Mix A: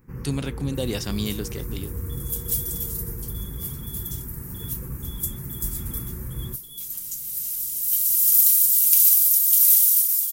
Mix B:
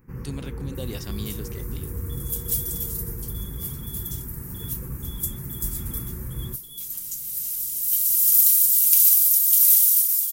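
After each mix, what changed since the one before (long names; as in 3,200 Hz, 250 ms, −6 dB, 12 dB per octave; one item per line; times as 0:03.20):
speech −7.5 dB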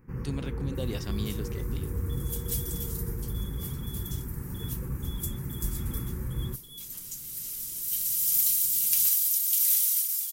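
master: add high-shelf EQ 7,400 Hz −10 dB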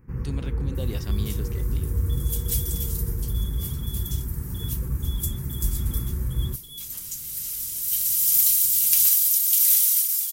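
first sound: add parametric band 62 Hz +9 dB 1.7 octaves
second sound +5.5 dB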